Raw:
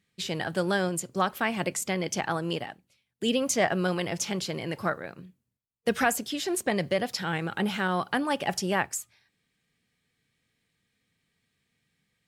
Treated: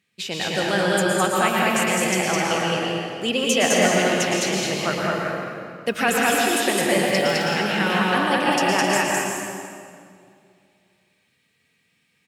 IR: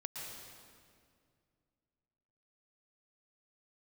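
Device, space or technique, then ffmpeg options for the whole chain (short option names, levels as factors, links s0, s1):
stadium PA: -filter_complex "[0:a]highpass=f=210:p=1,equalizer=f=2600:t=o:w=0.28:g=7,aecho=1:1:209.9|262.4:0.891|0.316[s0];[1:a]atrim=start_sample=2205[s1];[s0][s1]afir=irnorm=-1:irlink=0,volume=2.24"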